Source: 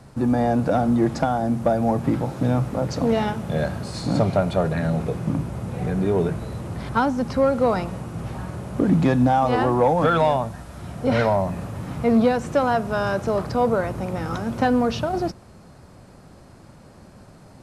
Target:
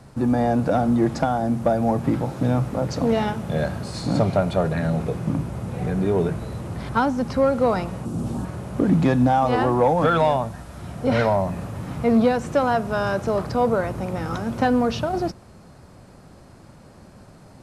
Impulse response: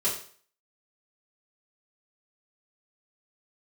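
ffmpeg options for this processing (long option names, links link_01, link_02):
-filter_complex "[0:a]asettb=1/sr,asplit=3[link_01][link_02][link_03];[link_01]atrim=end=8.054[link_04];[link_02]atrim=start=8.05:end=8.45,asetpts=PTS-STARTPTS,afade=type=in:duration=0.004:curve=qsin,afade=type=out:start_time=0.396:duration=0.004:curve=qsin,equalizer=frequency=250:width_type=o:width=1:gain=11,equalizer=frequency=2000:width_type=o:width=1:gain=-9,equalizer=frequency=8000:width_type=o:width=1:gain=6[link_05];[link_03]atrim=start=8.446[link_06];[link_04][link_05]acrossfade=duration=0.004:curve1=hsin:curve2=qsin[link_07];[link_07][link_06]acrossfade=duration=0.004:curve1=qsin:curve2=hsin"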